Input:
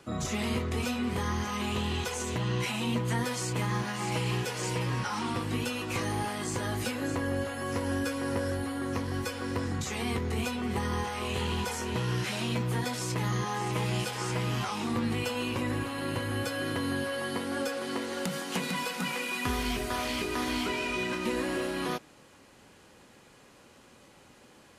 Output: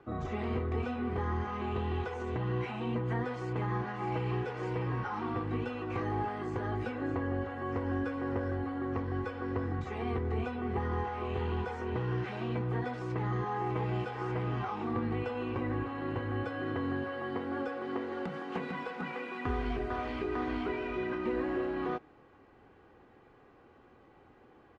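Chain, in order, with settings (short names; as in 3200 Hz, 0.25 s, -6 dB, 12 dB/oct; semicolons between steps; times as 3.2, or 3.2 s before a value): LPF 1500 Hz 12 dB/oct; comb 2.6 ms, depth 42%; gain -2 dB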